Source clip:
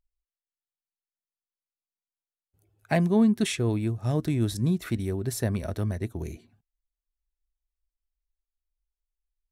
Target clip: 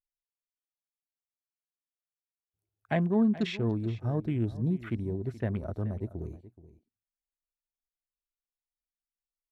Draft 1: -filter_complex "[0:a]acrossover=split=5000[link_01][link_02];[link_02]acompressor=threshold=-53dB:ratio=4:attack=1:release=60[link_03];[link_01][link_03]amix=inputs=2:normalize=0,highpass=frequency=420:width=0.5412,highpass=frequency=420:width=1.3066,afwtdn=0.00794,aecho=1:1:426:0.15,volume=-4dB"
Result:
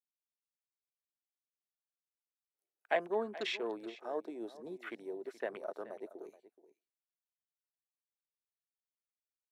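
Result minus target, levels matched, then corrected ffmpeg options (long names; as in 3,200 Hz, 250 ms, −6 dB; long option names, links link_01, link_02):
500 Hz band +6.5 dB
-filter_complex "[0:a]acrossover=split=5000[link_01][link_02];[link_02]acompressor=threshold=-53dB:ratio=4:attack=1:release=60[link_03];[link_01][link_03]amix=inputs=2:normalize=0,afwtdn=0.00794,aecho=1:1:426:0.15,volume=-4dB"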